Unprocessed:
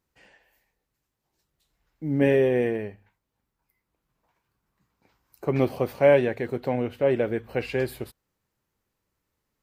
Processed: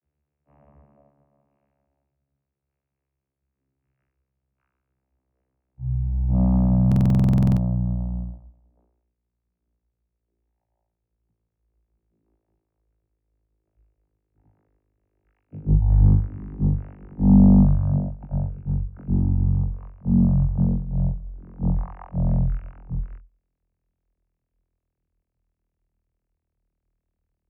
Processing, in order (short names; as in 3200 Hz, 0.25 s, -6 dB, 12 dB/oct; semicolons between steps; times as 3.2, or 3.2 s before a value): vocoder on a gliding note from G#3, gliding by -11 st; wide varispeed 0.35×; stuck buffer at 6.87, samples 2048, times 14; gain +4.5 dB